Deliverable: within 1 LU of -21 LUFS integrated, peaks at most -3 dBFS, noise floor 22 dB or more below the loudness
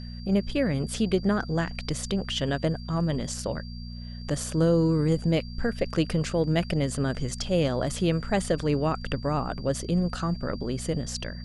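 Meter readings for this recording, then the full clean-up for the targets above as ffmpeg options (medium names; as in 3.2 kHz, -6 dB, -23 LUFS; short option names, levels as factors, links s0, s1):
hum 60 Hz; highest harmonic 240 Hz; hum level -36 dBFS; steady tone 4.7 kHz; tone level -47 dBFS; loudness -27.5 LUFS; peak level -11.0 dBFS; loudness target -21.0 LUFS
-> -af "bandreject=f=60:t=h:w=4,bandreject=f=120:t=h:w=4,bandreject=f=180:t=h:w=4,bandreject=f=240:t=h:w=4"
-af "bandreject=f=4700:w=30"
-af "volume=2.11"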